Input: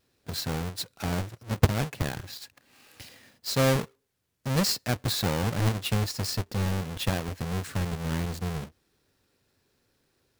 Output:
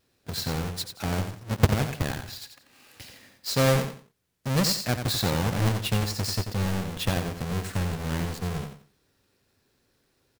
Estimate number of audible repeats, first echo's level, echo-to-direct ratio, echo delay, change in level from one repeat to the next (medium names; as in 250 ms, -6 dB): 3, -8.0 dB, -7.5 dB, 89 ms, -12.0 dB